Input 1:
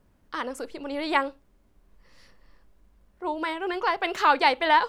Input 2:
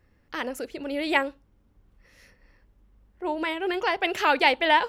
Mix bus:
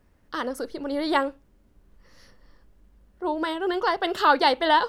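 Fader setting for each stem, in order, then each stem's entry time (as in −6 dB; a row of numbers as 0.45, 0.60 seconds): 0.0, −4.5 decibels; 0.00, 0.00 seconds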